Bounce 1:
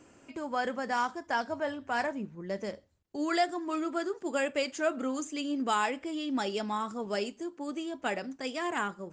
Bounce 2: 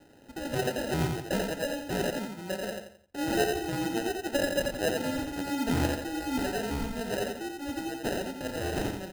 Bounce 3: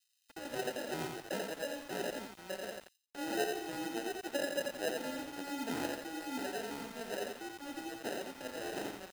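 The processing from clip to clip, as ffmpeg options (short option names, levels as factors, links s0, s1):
-af "acrusher=samples=39:mix=1:aa=0.000001,aecho=1:1:87|174|261|348:0.631|0.215|0.0729|0.0248"
-filter_complex "[0:a]highpass=270,acrossover=split=3100[s0][s1];[s0]aeval=exprs='val(0)*gte(abs(val(0)),0.00891)':c=same[s2];[s2][s1]amix=inputs=2:normalize=0,volume=0.447"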